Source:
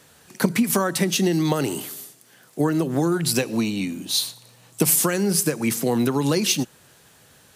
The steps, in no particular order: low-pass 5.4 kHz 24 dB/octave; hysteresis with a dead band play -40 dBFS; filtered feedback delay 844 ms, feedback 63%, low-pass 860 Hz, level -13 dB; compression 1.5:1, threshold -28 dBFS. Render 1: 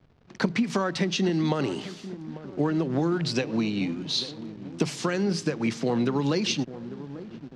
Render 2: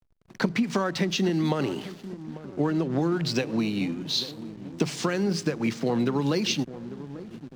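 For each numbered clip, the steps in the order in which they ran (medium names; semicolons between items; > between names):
compression > filtered feedback delay > hysteresis with a dead band > low-pass; low-pass > compression > filtered feedback delay > hysteresis with a dead band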